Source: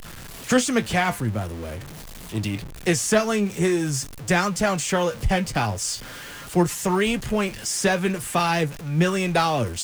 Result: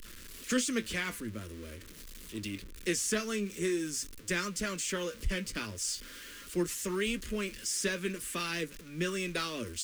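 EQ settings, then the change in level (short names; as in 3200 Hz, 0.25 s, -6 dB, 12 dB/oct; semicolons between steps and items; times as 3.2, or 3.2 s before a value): bell 470 Hz -2.5 dB 2.7 oct; fixed phaser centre 320 Hz, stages 4; -7.0 dB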